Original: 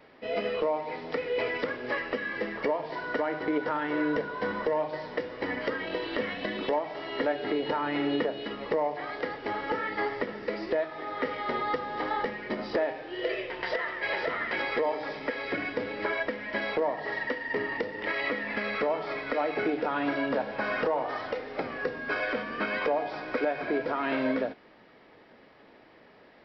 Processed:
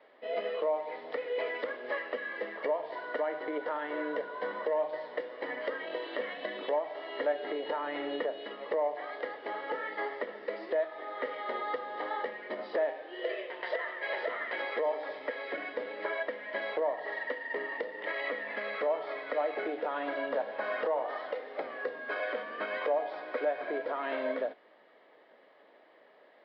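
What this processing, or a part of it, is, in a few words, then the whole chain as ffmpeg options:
phone earpiece: -af "highpass=480,equalizer=f=590:t=q:w=4:g=4,equalizer=f=870:t=q:w=4:g=-3,equalizer=f=1.4k:t=q:w=4:g=-5,equalizer=f=2.5k:t=q:w=4:g=-8,lowpass=f=3.6k:w=0.5412,lowpass=f=3.6k:w=1.3066,volume=-2dB"

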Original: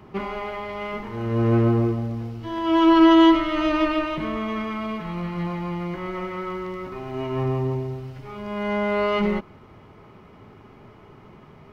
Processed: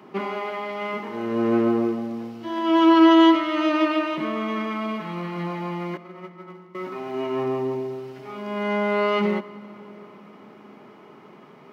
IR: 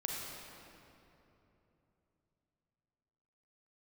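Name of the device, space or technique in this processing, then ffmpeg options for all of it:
compressed reverb return: -filter_complex "[0:a]asettb=1/sr,asplit=3[a][b][c];[a]atrim=end=5.974[d];[b]atrim=start=5.97:end=6.75,asetpts=PTS-STARTPTS,afade=t=in:d=0.004:c=qsin,afade=t=out:st=0.776:d=0.004:c=qsin,agate=range=-24dB:threshold=-27dB:ratio=16:detection=peak[e];[c]atrim=start=6.746[f];[d][e]acrossfade=d=0.004:c1=hsin:c2=qsin[g];[g][f]acrossfade=d=0.004:c1=qsin:c2=hsin,asplit=2[h][i];[1:a]atrim=start_sample=2205[j];[i][j]afir=irnorm=-1:irlink=0,acompressor=threshold=-23dB:ratio=6,volume=-12.5dB[k];[h][k]amix=inputs=2:normalize=0,highpass=f=190:w=0.5412,highpass=f=190:w=1.3066"

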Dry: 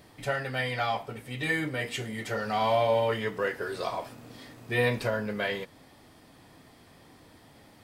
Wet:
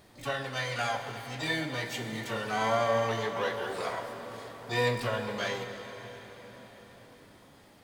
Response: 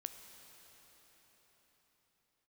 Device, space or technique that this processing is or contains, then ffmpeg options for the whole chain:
shimmer-style reverb: -filter_complex "[0:a]asplit=2[a][b];[b]asetrate=88200,aresample=44100,atempo=0.5,volume=-6dB[c];[a][c]amix=inputs=2:normalize=0[d];[1:a]atrim=start_sample=2205[e];[d][e]afir=irnorm=-1:irlink=0,asettb=1/sr,asplit=3[f][g][h];[f]atrim=end=0.784[i];[g]atrim=start=0.78:end=1.26,asetpts=PTS-STARTPTS,afade=t=in:d=0.004:c=qsin,afade=t=out:st=0.476:d=0.004:c=qsin,highshelf=f=7.9k:g=5[j];[h]atrim=start=1.256[k];[i][j]acrossfade=d=0.004:c1=hsin:c2=qsin[l];[l][k]acrossfade=d=0.004:c1=qsin:c2=hsin"

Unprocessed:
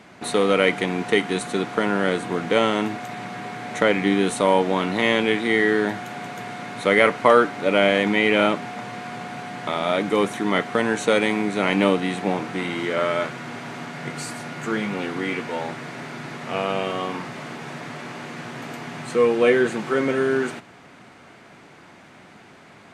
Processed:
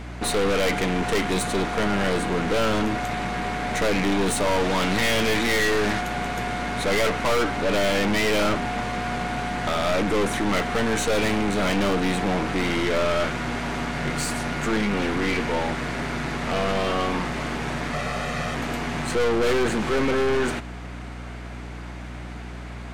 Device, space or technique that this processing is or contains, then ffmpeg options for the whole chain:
valve amplifier with mains hum: -filter_complex "[0:a]asettb=1/sr,asplit=3[a][b][c];[a]atrim=end=4.604[d];[b]atrim=start=4.6:end=6.01,asetpts=PTS-STARTPTS,afade=t=in:d=0.004:c=qsin,afade=t=out:st=1.406:d=0.004:c=qsin,equalizer=f=4.5k:w=0.33:g=5.5[e];[c]atrim=start=6.006[f];[d][e]acrossfade=d=0.004:c1=hsin:c2=qsin[g];[g][f]acrossfade=d=0.004:c1=qsin:c2=hsin,asettb=1/sr,asplit=3[h][i][j];[h]atrim=end=17.934[k];[i]atrim=start=17.93:end=18.55,asetpts=PTS-STARTPTS,afade=t=in:d=0.004:c=qsin,afade=t=out:st=0.616:d=0.004:c=qsin,aecho=1:1:1.6:0.81,atrim=end_sample=27342[l];[j]atrim=start=18.546[m];[k][l]acrossfade=d=0.004:c1=hsin:c2=qsin[n];[n][m]acrossfade=d=0.004:c1=qsin:c2=hsin,aeval=exprs='(tanh(25.1*val(0)+0.5)-tanh(0.5))/25.1':c=same,aeval=exprs='val(0)+0.00708*(sin(2*PI*60*n/s)+sin(2*PI*2*60*n/s)/2+sin(2*PI*3*60*n/s)/3+sin(2*PI*4*60*n/s)/4+sin(2*PI*5*60*n/s)/5)':c=same,volume=8dB"

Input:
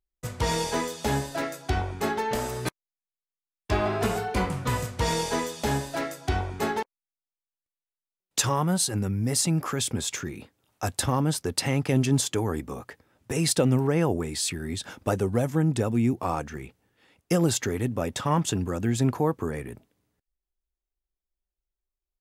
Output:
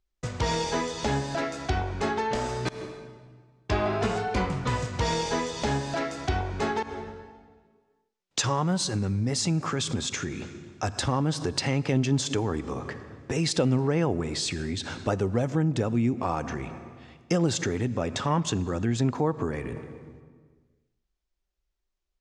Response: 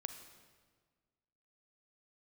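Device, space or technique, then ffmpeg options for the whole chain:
ducked reverb: -filter_complex "[0:a]lowpass=f=6.9k:w=0.5412,lowpass=f=6.9k:w=1.3066,asplit=3[a][b][c];[1:a]atrim=start_sample=2205[d];[b][d]afir=irnorm=-1:irlink=0[e];[c]apad=whole_len=979222[f];[e][f]sidechaincompress=threshold=-41dB:ratio=6:attack=31:release=110,volume=9.5dB[g];[a][g]amix=inputs=2:normalize=0,volume=-3.5dB"

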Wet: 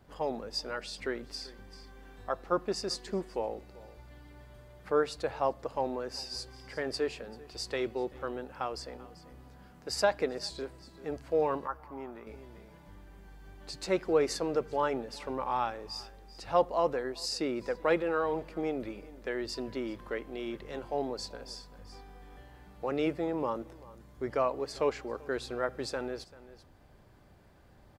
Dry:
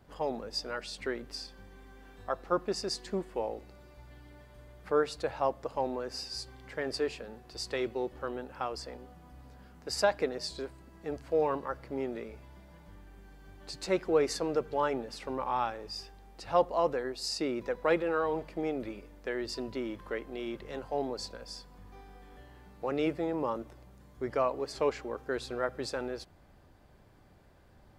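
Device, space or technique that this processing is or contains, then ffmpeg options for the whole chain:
ducked delay: -filter_complex "[0:a]asplit=3[a][b][c];[b]adelay=389,volume=-6dB[d];[c]apad=whole_len=1251158[e];[d][e]sidechaincompress=threshold=-53dB:ratio=4:attack=16:release=618[f];[a][f]amix=inputs=2:normalize=0,asettb=1/sr,asplit=3[g][h][i];[g]atrim=end=11.674[j];[h]atrim=start=11.67:end=12.27,asetpts=PTS-STARTPTS,afade=t=in:d=0.004:c=qsin,afade=t=out:st=0.596:d=0.004:c=qsin,equalizer=f=125:t=o:w=1:g=-9,equalizer=f=250:t=o:w=1:g=-4,equalizer=f=500:t=o:w=1:g=-11,equalizer=f=1k:t=o:w=1:g=9,equalizer=f=2k:t=o:w=1:g=-6,equalizer=f=4k:t=o:w=1:g=-9,equalizer=f=8k:t=o:w=1:g=-8[k];[i]atrim=start=12.266[l];[j][k]acrossfade=d=0.004:c1=hsin:c2=qsin[m];[m][l]acrossfade=d=0.004:c1=qsin:c2=hsin"

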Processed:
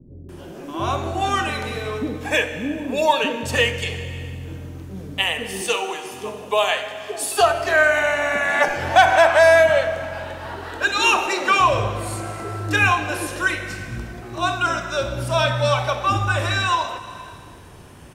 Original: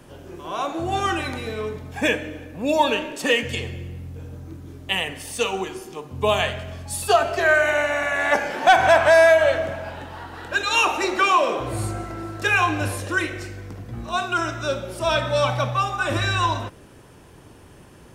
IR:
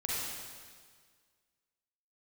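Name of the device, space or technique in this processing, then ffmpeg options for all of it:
compressed reverb return: -filter_complex "[0:a]asettb=1/sr,asplit=3[a][b][c];[a]atrim=end=5.614[d];[b]atrim=start=5.61:end=7.4,asetpts=PTS-STARTPTS,afade=t=in:d=0.004:c=qsin,afade=t=out:st=1.786:d=0.004:c=qsin,highpass=330[e];[c]atrim=start=7.396[f];[d][e]acrossfade=d=0.004:c1=hsin:c2=qsin[g];[g][f]acrossfade=d=0.004:c1=qsin:c2=hsin,acrossover=split=360[h][i];[i]adelay=290[j];[h][j]amix=inputs=2:normalize=0,asplit=2[k][l];[1:a]atrim=start_sample=2205[m];[l][m]afir=irnorm=-1:irlink=0,acompressor=threshold=-23dB:ratio=6,volume=-8.5dB[n];[k][n]amix=inputs=2:normalize=0,volume=1dB"

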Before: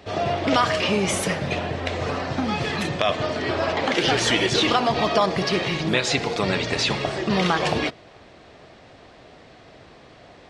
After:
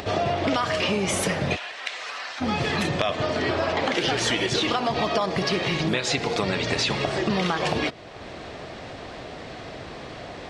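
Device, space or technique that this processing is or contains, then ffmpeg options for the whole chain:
upward and downward compression: -filter_complex "[0:a]acompressor=mode=upward:threshold=-36dB:ratio=2.5,acompressor=threshold=-27dB:ratio=5,asplit=3[a][b][c];[a]afade=t=out:st=1.55:d=0.02[d];[b]highpass=1.5k,afade=t=in:st=1.55:d=0.02,afade=t=out:st=2.4:d=0.02[e];[c]afade=t=in:st=2.4:d=0.02[f];[d][e][f]amix=inputs=3:normalize=0,volume=5.5dB"

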